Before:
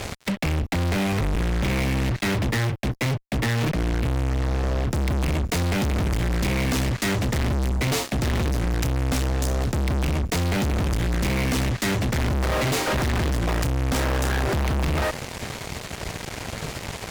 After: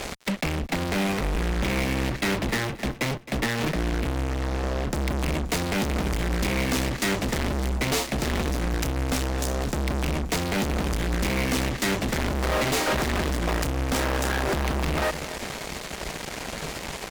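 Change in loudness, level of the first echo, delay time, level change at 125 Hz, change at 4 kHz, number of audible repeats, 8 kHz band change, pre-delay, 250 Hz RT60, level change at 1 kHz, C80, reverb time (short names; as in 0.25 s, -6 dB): -2.0 dB, -14.5 dB, 0.265 s, -5.5 dB, 0.0 dB, 3, 0.0 dB, none, none, 0.0 dB, none, none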